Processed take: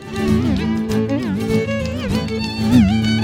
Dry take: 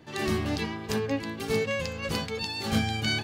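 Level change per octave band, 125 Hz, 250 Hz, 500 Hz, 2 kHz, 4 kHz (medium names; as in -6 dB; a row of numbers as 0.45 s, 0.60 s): +13.0 dB, +16.0 dB, +8.0 dB, +4.5 dB, +4.0 dB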